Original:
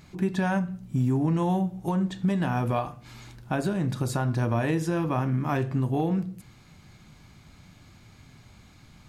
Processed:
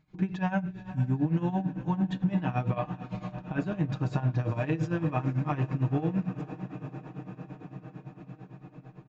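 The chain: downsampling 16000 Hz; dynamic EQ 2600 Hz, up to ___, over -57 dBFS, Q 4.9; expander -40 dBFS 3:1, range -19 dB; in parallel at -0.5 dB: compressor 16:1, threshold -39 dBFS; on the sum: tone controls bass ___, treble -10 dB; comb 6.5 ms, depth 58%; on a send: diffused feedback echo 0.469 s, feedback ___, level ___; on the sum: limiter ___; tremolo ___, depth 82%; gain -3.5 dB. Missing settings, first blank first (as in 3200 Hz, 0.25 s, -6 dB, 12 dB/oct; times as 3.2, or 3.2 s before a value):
+6 dB, +2 dB, 76%, -13 dB, -14 dBFS, 8.9 Hz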